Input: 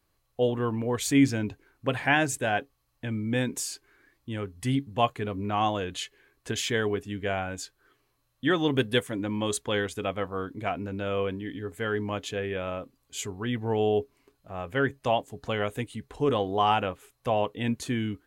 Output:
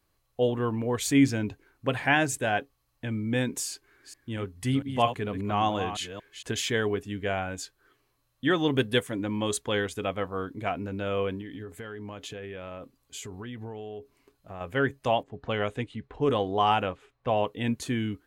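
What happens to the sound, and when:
3.68–6.53 s: chunks repeated in reverse 229 ms, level -9 dB
11.41–14.61 s: compression 12:1, threshold -35 dBFS
15.23–17.40 s: level-controlled noise filter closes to 1.8 kHz, open at -21 dBFS

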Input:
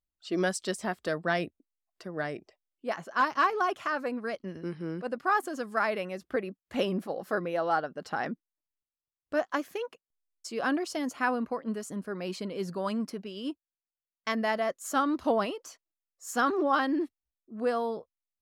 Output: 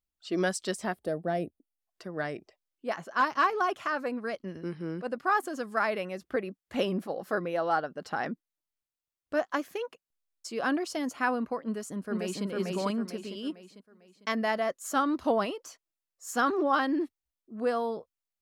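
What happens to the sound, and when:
0.94–1.80 s: time-frequency box 850–8500 Hz -12 dB
11.65–12.45 s: echo throw 450 ms, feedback 40%, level -0.5 dB

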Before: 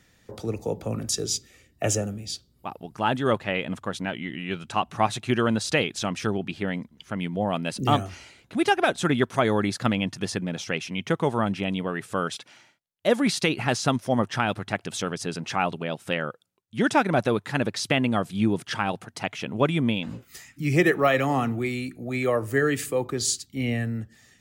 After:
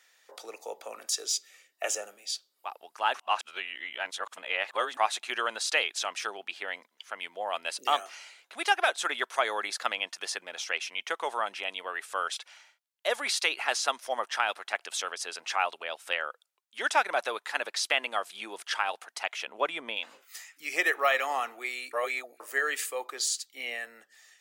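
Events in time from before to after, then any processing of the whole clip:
3.14–4.97 s: reverse
19.47–19.97 s: tilt EQ -2 dB/octave
21.93–22.40 s: reverse
whole clip: Bessel high-pass 860 Hz, order 4; de-esser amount 45%

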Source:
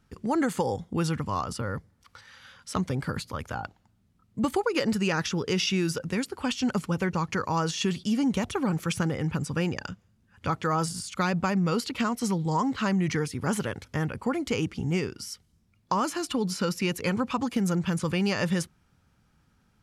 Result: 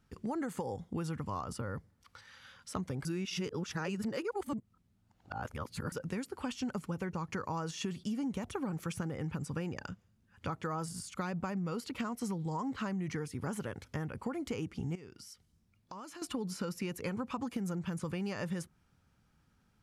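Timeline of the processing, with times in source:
3.05–5.92 s: reverse
14.95–16.22 s: compression 2.5:1, threshold -46 dBFS
whole clip: dynamic bell 3.9 kHz, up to -6 dB, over -46 dBFS, Q 0.7; compression, threshold -28 dBFS; trim -5 dB

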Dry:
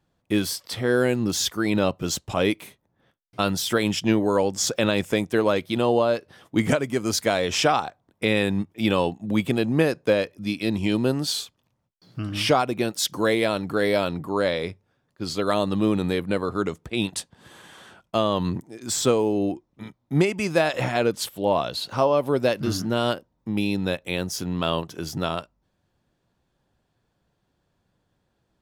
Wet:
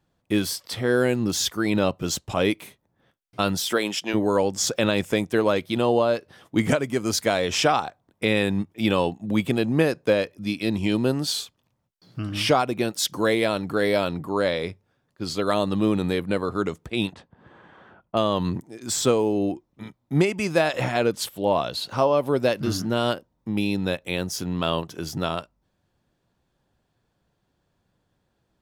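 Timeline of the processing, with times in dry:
3.59–4.13 s: high-pass 180 Hz -> 530 Hz
17.13–18.17 s: low-pass 1.5 kHz

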